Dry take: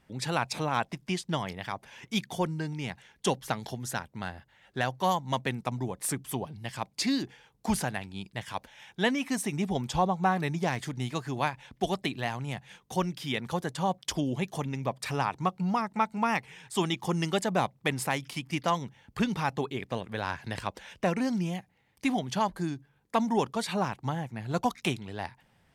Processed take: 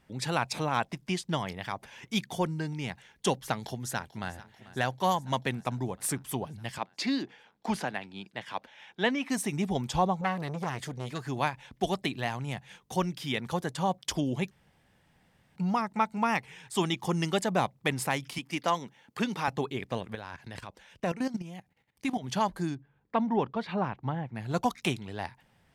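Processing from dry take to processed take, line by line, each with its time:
1.33–1.86 s: upward compressor, threshold -37 dBFS
3.55–4.32 s: echo throw 440 ms, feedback 75%, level -17.5 dB
6.78–9.30 s: three-band isolator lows -16 dB, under 180 Hz, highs -13 dB, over 5 kHz
10.21–11.20 s: transformer saturation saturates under 1.4 kHz
14.51–15.56 s: room tone
18.38–19.48 s: high-pass 220 Hz
20.15–22.24 s: level held to a coarse grid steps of 14 dB
22.75–24.35 s: distance through air 330 m

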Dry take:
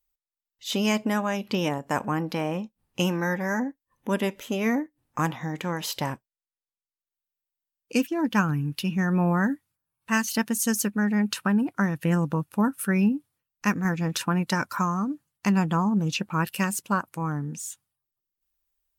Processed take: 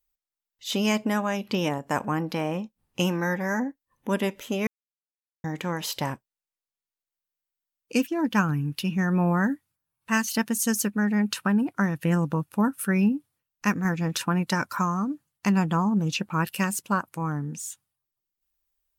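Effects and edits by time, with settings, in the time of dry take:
4.67–5.44 s: mute

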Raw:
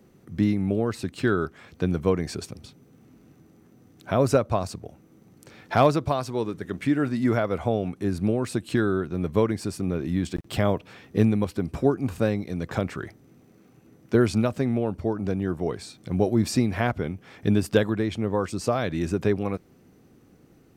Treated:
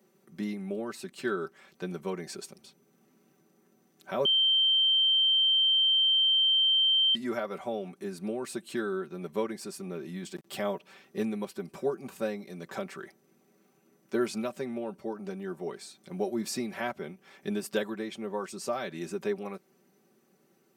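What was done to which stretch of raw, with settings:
4.25–7.15 s: bleep 3.13 kHz -15 dBFS
whole clip: Bessel high-pass 310 Hz, order 2; treble shelf 7.7 kHz +6.5 dB; comb 5.2 ms, depth 76%; trim -8.5 dB

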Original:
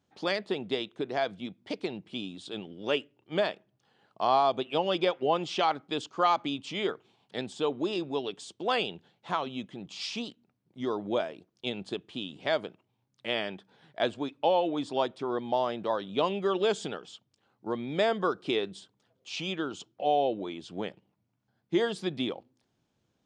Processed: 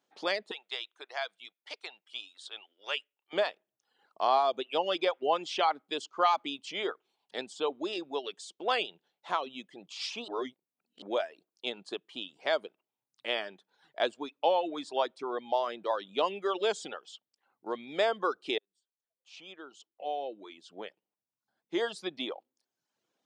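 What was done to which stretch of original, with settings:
0.51–3.33 s: high-pass 1 kHz
10.28–11.02 s: reverse
18.58–22.25 s: fade in
whole clip: reverb removal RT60 0.75 s; high-pass 400 Hz 12 dB/octave

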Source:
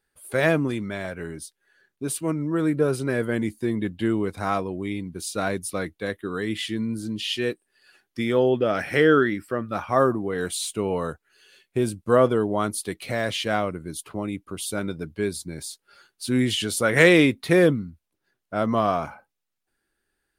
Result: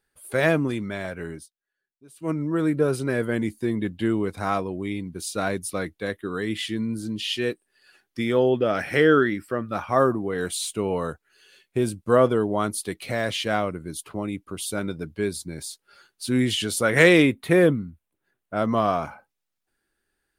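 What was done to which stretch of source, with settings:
1.34–2.31 s: dip -22 dB, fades 0.15 s
17.22–18.57 s: peaking EQ 5.1 kHz -9.5 dB

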